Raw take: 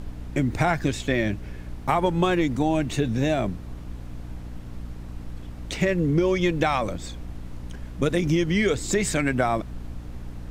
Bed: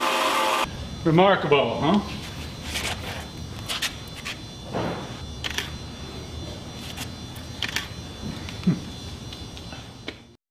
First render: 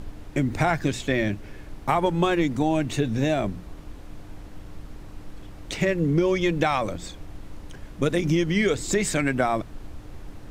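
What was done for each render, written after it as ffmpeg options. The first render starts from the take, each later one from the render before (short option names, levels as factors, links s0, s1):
-af "bandreject=f=60:t=h:w=4,bandreject=f=120:t=h:w=4,bandreject=f=180:t=h:w=4,bandreject=f=240:t=h:w=4"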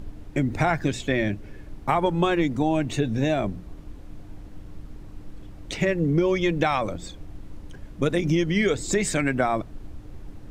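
-af "afftdn=nr=6:nf=-43"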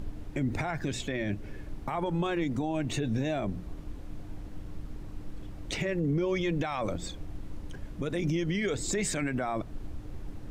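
-af "acompressor=threshold=0.0398:ratio=1.5,alimiter=limit=0.0841:level=0:latency=1:release=30"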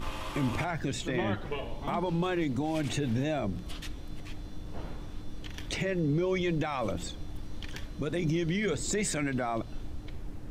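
-filter_complex "[1:a]volume=0.126[s0];[0:a][s0]amix=inputs=2:normalize=0"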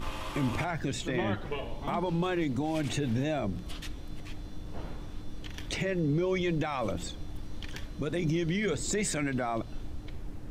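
-af anull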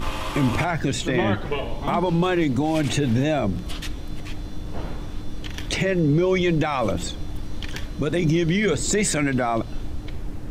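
-af "volume=2.82"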